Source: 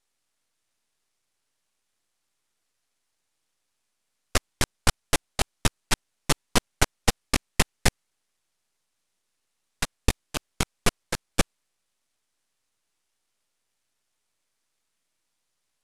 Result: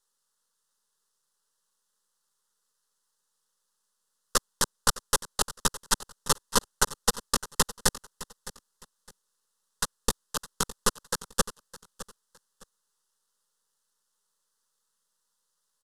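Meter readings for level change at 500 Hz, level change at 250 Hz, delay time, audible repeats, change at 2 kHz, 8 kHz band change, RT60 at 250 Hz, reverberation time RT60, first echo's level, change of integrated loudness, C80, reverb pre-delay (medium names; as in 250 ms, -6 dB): -2.0 dB, -6.0 dB, 611 ms, 2, -4.5 dB, +2.5 dB, no reverb, no reverb, -17.0 dB, -0.5 dB, no reverb, no reverb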